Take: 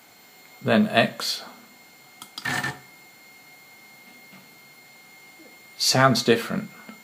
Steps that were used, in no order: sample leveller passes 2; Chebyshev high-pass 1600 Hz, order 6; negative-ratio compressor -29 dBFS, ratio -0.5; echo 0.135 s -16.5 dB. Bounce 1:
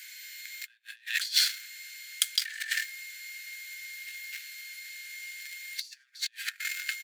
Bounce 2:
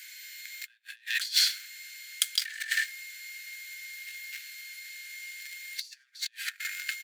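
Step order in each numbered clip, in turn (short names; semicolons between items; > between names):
echo > sample leveller > negative-ratio compressor > Chebyshev high-pass; sample leveller > echo > negative-ratio compressor > Chebyshev high-pass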